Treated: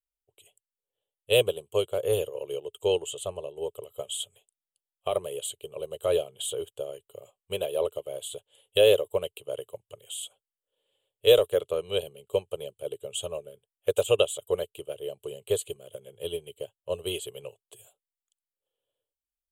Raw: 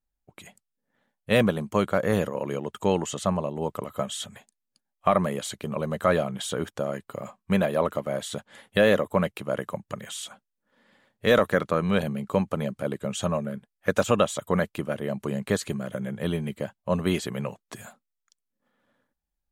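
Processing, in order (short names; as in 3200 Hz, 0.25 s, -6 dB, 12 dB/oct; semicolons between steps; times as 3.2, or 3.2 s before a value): EQ curve 110 Hz 0 dB, 230 Hz -24 dB, 420 Hz +9 dB, 830 Hz -5 dB, 1900 Hz -15 dB, 3000 Hz +13 dB, 5500 Hz -11 dB, 7800 Hz +12 dB; upward expander 1.5:1, over -39 dBFS; gain -2 dB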